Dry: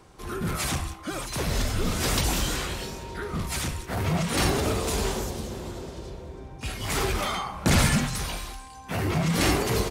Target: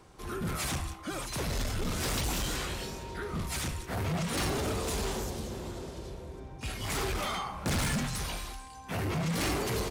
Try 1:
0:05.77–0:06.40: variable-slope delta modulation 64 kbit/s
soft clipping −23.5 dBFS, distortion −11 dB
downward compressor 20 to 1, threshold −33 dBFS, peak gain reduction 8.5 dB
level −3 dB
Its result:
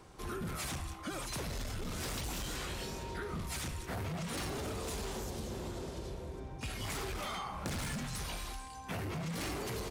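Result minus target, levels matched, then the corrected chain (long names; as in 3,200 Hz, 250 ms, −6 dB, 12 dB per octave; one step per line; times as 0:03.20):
downward compressor: peak gain reduction +8.5 dB
0:05.77–0:06.40: variable-slope delta modulation 64 kbit/s
soft clipping −23.5 dBFS, distortion −11 dB
level −3 dB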